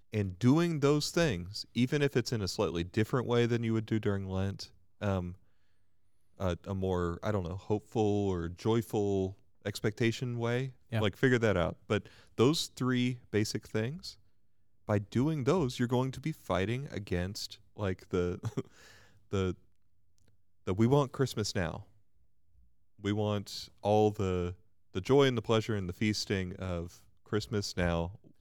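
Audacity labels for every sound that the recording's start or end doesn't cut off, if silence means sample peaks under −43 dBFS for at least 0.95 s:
6.400000	19.540000	sound
20.670000	21.810000	sound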